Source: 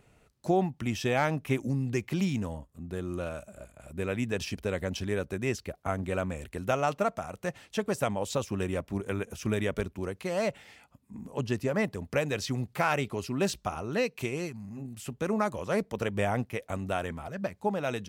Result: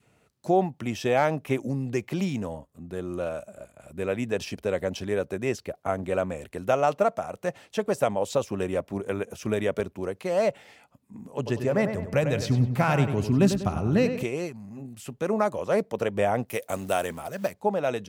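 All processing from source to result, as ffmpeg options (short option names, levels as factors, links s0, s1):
-filter_complex "[0:a]asettb=1/sr,asplit=3[s0][s1][s2];[s0]atrim=end=11.364[s3];[s1]atrim=start=11.36:end=14.23,asetpts=PTS-STARTPTS,afade=t=in:d=0.004:c=qsin,afade=t=out:st=2.866:d=0.004:c=qsin,asubboost=boost=10.5:cutoff=210,asplit=2[s4][s5];[s5]adelay=97,lowpass=f=3100:p=1,volume=0.398,asplit=2[s6][s7];[s7]adelay=97,lowpass=f=3100:p=1,volume=0.45,asplit=2[s8][s9];[s9]adelay=97,lowpass=f=3100:p=1,volume=0.45,asplit=2[s10][s11];[s11]adelay=97,lowpass=f=3100:p=1,volume=0.45,asplit=2[s12][s13];[s13]adelay=97,lowpass=f=3100:p=1,volume=0.45[s14];[s4][s6][s8][s10][s12][s14]amix=inputs=6:normalize=0,atrim=end_sample=126567[s15];[s2]atrim=start=14.226[s16];[s3][s15]acrossfade=d=0.004:c1=hsin:c2=qsin[s17];[s17][s16]acrossfade=d=0.004:c1=qsin:c2=hsin,asettb=1/sr,asplit=3[s18][s19][s20];[s18]atrim=end=16.484[s21];[s19]atrim=start=16.48:end=17.54,asetpts=PTS-STARTPTS,afade=t=in:d=0.004:c=qsin,afade=t=out:st=1.056:d=0.004:c=qsin,highpass=f=53:p=1,aemphasis=mode=production:type=75kf,acrusher=bits=5:mode=log:mix=0:aa=0.000001[s22];[s20]atrim=start=17.536[s23];[s21][s22]acrossfade=d=0.004:c1=hsin:c2=qsin[s24];[s24][s23]acrossfade=d=0.004:c1=qsin:c2=hsin,adynamicequalizer=threshold=0.00794:dfrequency=580:dqfactor=1:tfrequency=580:tqfactor=1:attack=5:release=100:ratio=0.375:range=3.5:mode=boostabove:tftype=bell,highpass=95"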